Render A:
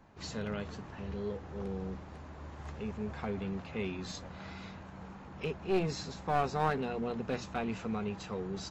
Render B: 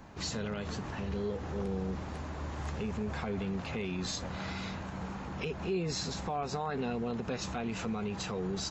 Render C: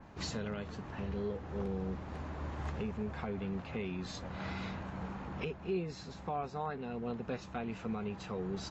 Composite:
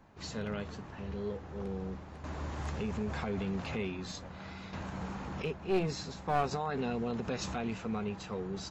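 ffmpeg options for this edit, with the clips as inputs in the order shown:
-filter_complex "[1:a]asplit=3[a][b][c];[0:a]asplit=4[d][e][f][g];[d]atrim=end=2.242[h];[a]atrim=start=2.238:end=3.782[i];[e]atrim=start=3.778:end=4.732[j];[b]atrim=start=4.728:end=5.422[k];[f]atrim=start=5.418:end=6.512[l];[c]atrim=start=6.508:end=7.732[m];[g]atrim=start=7.728[n];[h][i]acrossfade=d=0.004:c1=hsin:c2=hsin[o];[o][j]acrossfade=d=0.004:c1=hsin:c2=hsin[p];[p][k]acrossfade=d=0.004:c1=hsin:c2=hsin[q];[q][l]acrossfade=d=0.004:c1=hsin:c2=hsin[r];[r][m]acrossfade=d=0.004:c1=hsin:c2=hsin[s];[s][n]acrossfade=d=0.004:c1=hsin:c2=hsin"

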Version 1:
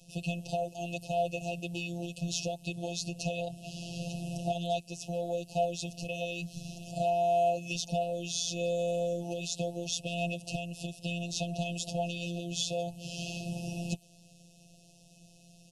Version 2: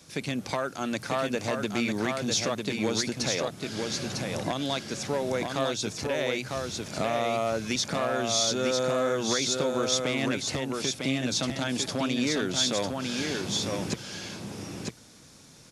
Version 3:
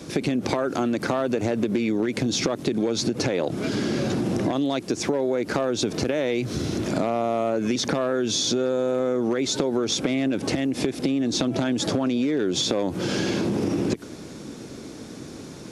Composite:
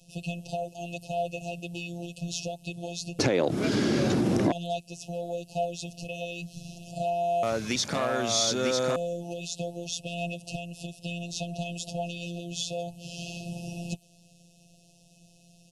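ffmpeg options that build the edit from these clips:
-filter_complex "[0:a]asplit=3[a][b][c];[a]atrim=end=3.192[d];[2:a]atrim=start=3.188:end=4.522[e];[b]atrim=start=4.518:end=7.432[f];[1:a]atrim=start=7.428:end=8.962[g];[c]atrim=start=8.958[h];[d][e]acrossfade=d=0.004:c1=hsin:c2=hsin[i];[i][f]acrossfade=d=0.004:c1=hsin:c2=hsin[j];[j][g]acrossfade=d=0.004:c1=hsin:c2=hsin[k];[k][h]acrossfade=d=0.004:c1=hsin:c2=hsin"

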